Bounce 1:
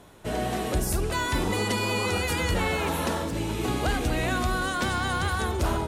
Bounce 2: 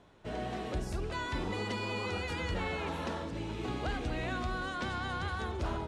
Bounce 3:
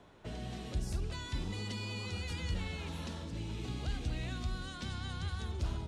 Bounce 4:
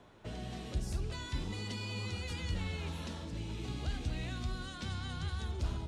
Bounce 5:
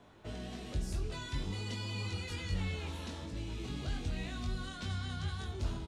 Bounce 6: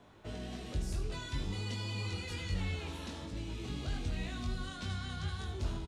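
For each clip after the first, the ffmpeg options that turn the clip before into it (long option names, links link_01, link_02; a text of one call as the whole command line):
ffmpeg -i in.wav -af "lowpass=4800,volume=-9dB" out.wav
ffmpeg -i in.wav -filter_complex "[0:a]acrossover=split=210|3000[link_01][link_02][link_03];[link_02]acompressor=threshold=-50dB:ratio=6[link_04];[link_01][link_04][link_03]amix=inputs=3:normalize=0,volume=1.5dB" out.wav
ffmpeg -i in.wav -af "flanger=delay=7.7:depth=9:regen=76:speed=0.44:shape=triangular,volume=4.5dB" out.wav
ffmpeg -i in.wav -filter_complex "[0:a]asplit=2[link_01][link_02];[link_02]adelay=21,volume=-3.5dB[link_03];[link_01][link_03]amix=inputs=2:normalize=0,volume=-1.5dB" out.wav
ffmpeg -i in.wav -af "aecho=1:1:79:0.266" out.wav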